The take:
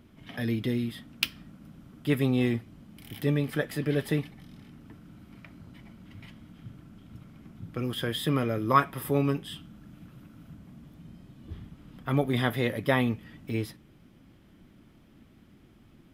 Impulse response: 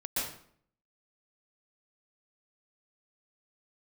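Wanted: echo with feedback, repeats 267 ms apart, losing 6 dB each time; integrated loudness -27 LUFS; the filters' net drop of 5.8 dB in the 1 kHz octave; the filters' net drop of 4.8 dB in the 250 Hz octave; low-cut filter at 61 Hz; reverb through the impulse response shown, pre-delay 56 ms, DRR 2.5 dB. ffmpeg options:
-filter_complex "[0:a]highpass=61,equalizer=f=250:t=o:g=-5.5,equalizer=f=1000:t=o:g=-7,aecho=1:1:267|534|801|1068|1335|1602:0.501|0.251|0.125|0.0626|0.0313|0.0157,asplit=2[s0][s1];[1:a]atrim=start_sample=2205,adelay=56[s2];[s1][s2]afir=irnorm=-1:irlink=0,volume=0.398[s3];[s0][s3]amix=inputs=2:normalize=0,volume=1.33"

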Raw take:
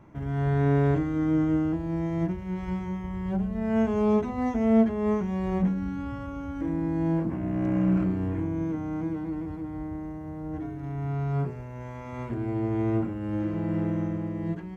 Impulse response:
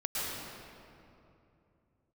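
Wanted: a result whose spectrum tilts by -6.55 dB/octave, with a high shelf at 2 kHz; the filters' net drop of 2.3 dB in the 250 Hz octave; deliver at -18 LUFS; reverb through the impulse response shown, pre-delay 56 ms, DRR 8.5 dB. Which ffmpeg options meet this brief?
-filter_complex "[0:a]equalizer=f=250:t=o:g=-3.5,highshelf=f=2000:g=9,asplit=2[s0][s1];[1:a]atrim=start_sample=2205,adelay=56[s2];[s1][s2]afir=irnorm=-1:irlink=0,volume=0.178[s3];[s0][s3]amix=inputs=2:normalize=0,volume=3.55"

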